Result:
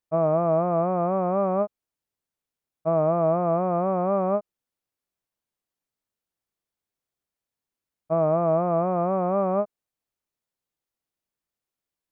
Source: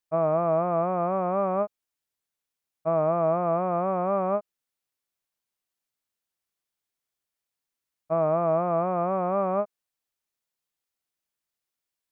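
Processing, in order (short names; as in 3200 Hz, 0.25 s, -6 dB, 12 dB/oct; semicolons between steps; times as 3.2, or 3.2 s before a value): tilt shelf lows +4.5 dB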